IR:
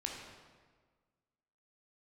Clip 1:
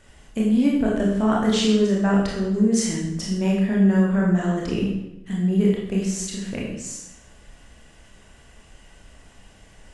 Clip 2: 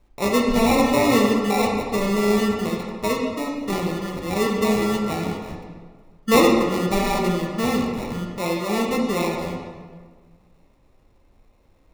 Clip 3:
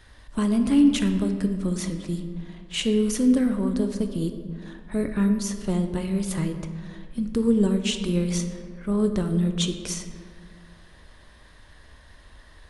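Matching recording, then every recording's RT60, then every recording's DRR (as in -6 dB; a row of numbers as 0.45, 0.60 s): 2; 0.90, 1.5, 2.1 s; -4.0, -0.5, 6.5 dB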